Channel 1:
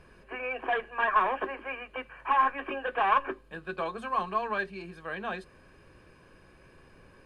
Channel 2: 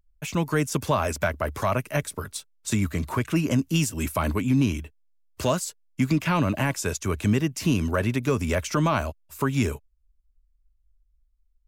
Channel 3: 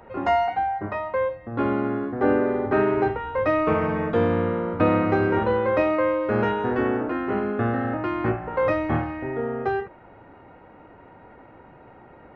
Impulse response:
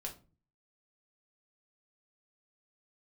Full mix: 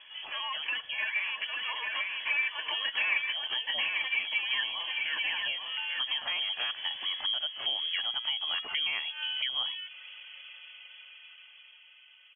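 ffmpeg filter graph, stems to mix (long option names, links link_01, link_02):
-filter_complex "[0:a]volume=2dB,asplit=2[link_01][link_02];[link_02]volume=-8.5dB[link_03];[1:a]volume=-12dB,asplit=2[link_04][link_05];[2:a]aecho=1:1:5.2:0.61,acompressor=threshold=-26dB:ratio=6,volume=-12dB[link_06];[link_05]apad=whole_len=544926[link_07];[link_06][link_07]sidechaincompress=threshold=-51dB:ratio=3:attack=12:release=125[link_08];[link_03]aecho=0:1:843:1[link_09];[link_01][link_04][link_08][link_09]amix=inputs=4:normalize=0,dynaudnorm=framelen=660:gausssize=7:maxgain=13dB,lowpass=frequency=2900:width_type=q:width=0.5098,lowpass=frequency=2900:width_type=q:width=0.6013,lowpass=frequency=2900:width_type=q:width=0.9,lowpass=frequency=2900:width_type=q:width=2.563,afreqshift=-3400,acompressor=threshold=-34dB:ratio=2.5"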